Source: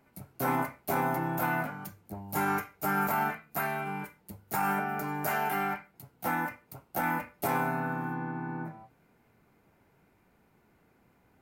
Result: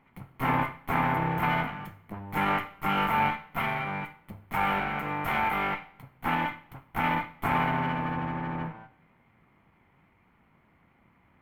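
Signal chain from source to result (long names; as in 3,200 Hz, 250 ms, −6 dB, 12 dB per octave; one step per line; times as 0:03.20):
lower of the sound and its delayed copy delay 0.94 ms
high shelf with overshoot 3,600 Hz −13.5 dB, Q 1.5
coupled-rooms reverb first 0.61 s, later 2.2 s, from −24 dB, DRR 12 dB
level +3 dB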